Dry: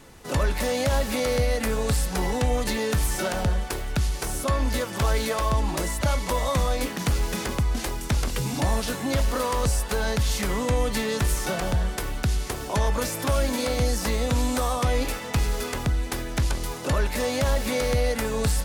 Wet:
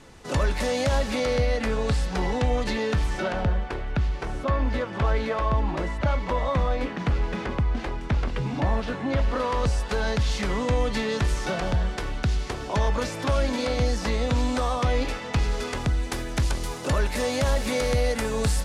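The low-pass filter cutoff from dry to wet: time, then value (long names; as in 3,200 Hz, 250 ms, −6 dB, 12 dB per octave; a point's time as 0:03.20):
0:00.85 7,700 Hz
0:01.46 4,600 Hz
0:02.76 4,600 Hz
0:03.59 2,500 Hz
0:09.09 2,500 Hz
0:09.88 5,100 Hz
0:15.40 5,100 Hz
0:16.19 10,000 Hz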